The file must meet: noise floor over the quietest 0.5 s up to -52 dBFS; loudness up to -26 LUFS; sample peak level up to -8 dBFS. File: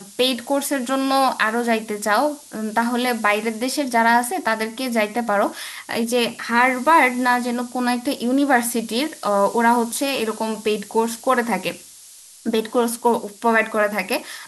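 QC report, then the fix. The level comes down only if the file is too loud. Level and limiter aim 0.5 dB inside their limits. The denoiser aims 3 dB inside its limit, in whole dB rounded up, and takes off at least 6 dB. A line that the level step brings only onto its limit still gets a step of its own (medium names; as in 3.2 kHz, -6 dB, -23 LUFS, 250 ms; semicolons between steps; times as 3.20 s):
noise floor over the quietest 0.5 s -44 dBFS: fail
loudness -20.0 LUFS: fail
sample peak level -3.5 dBFS: fail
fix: noise reduction 6 dB, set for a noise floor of -44 dBFS; trim -6.5 dB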